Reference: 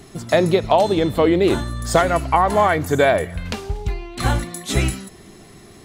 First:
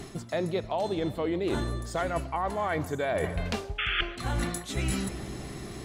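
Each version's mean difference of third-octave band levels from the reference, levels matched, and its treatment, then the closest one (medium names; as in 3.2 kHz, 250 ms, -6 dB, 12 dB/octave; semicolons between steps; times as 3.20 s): 6.0 dB: painted sound noise, 3.78–4.01 s, 1.2–3.5 kHz -14 dBFS; treble shelf 12 kHz -6.5 dB; filtered feedback delay 155 ms, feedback 79%, low-pass 2.4 kHz, level -22.5 dB; reverse; compression 16:1, threshold -29 dBFS, peak gain reduction 20.5 dB; reverse; trim +3 dB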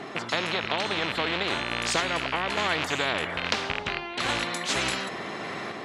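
10.0 dB: rattle on loud lows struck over -26 dBFS, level -21 dBFS; random-step tremolo, depth 55%; band-pass 340–2500 Hz; spectrum-flattening compressor 4:1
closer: first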